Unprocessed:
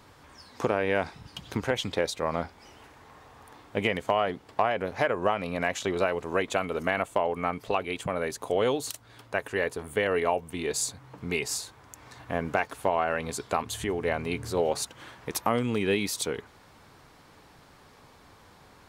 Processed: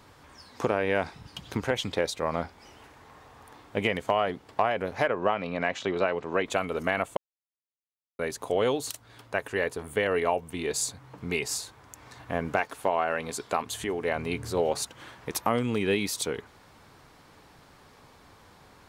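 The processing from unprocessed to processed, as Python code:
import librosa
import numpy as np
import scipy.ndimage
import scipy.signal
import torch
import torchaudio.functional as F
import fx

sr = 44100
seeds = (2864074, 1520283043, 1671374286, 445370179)

y = fx.bandpass_edges(x, sr, low_hz=110.0, high_hz=4600.0, at=(5.08, 6.46))
y = fx.peak_eq(y, sr, hz=78.0, db=-7.5, octaves=2.0, at=(12.6, 14.16))
y = fx.edit(y, sr, fx.silence(start_s=7.17, length_s=1.02), tone=tone)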